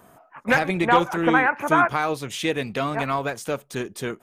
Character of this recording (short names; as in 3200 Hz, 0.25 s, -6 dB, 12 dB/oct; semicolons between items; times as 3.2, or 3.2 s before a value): noise floor -56 dBFS; spectral tilt -3.5 dB/oct